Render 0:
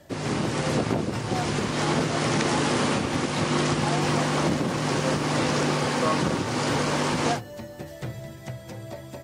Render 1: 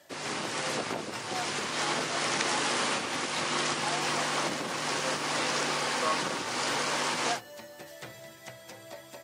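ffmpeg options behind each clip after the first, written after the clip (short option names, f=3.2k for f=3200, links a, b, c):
-af "highpass=f=1.1k:p=1"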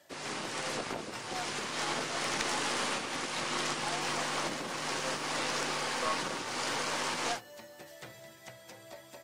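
-af "aeval=exprs='(tanh(5.01*val(0)+0.7)-tanh(0.7))/5.01':c=same"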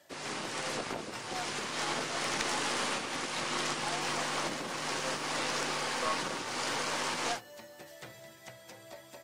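-af anull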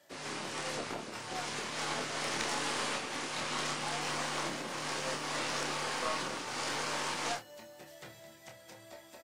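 -filter_complex "[0:a]asplit=2[a][b];[b]adelay=27,volume=-5.5dB[c];[a][c]amix=inputs=2:normalize=0,volume=-3dB"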